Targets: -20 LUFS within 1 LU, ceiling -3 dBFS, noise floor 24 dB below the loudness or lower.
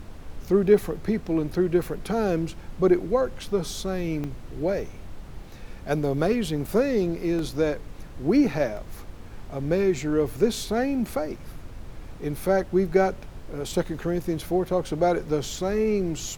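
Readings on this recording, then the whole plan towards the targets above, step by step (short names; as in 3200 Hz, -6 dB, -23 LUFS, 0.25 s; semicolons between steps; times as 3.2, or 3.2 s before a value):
dropouts 3; longest dropout 1.8 ms; noise floor -41 dBFS; noise floor target -50 dBFS; loudness -25.5 LUFS; peak -7.0 dBFS; loudness target -20.0 LUFS
-> interpolate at 4.24/7.39/8.77, 1.8 ms; noise print and reduce 9 dB; gain +5.5 dB; limiter -3 dBFS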